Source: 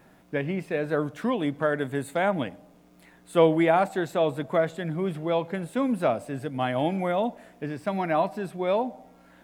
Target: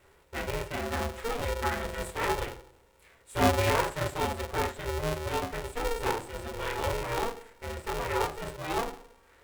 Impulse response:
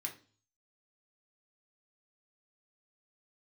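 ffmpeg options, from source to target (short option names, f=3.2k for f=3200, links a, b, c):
-filter_complex "[1:a]atrim=start_sample=2205[a];[0:a][a]afir=irnorm=-1:irlink=0,aeval=exprs='val(0)*sgn(sin(2*PI*230*n/s))':c=same,volume=-2.5dB"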